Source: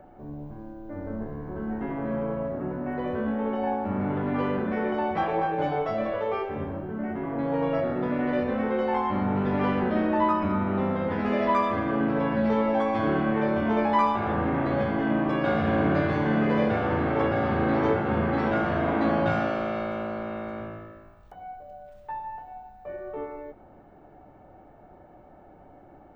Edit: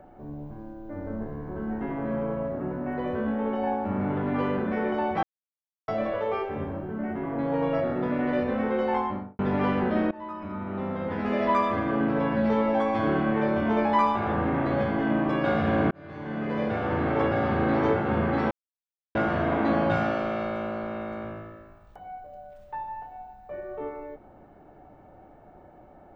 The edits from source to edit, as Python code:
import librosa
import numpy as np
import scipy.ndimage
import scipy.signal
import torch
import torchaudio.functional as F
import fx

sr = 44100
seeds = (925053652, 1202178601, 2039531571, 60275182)

y = fx.studio_fade_out(x, sr, start_s=8.95, length_s=0.44)
y = fx.edit(y, sr, fx.silence(start_s=5.23, length_s=0.65),
    fx.fade_in_from(start_s=10.11, length_s=1.42, floor_db=-21.5),
    fx.fade_in_span(start_s=15.91, length_s=1.19),
    fx.insert_silence(at_s=18.51, length_s=0.64), tone=tone)